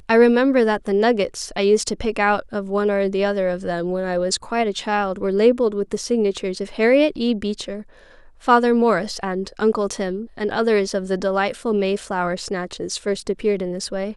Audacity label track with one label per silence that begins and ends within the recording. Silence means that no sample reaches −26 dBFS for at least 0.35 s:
7.790000	8.480000	silence